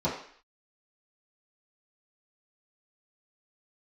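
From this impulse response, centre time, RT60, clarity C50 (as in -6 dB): 34 ms, 0.55 s, 5.5 dB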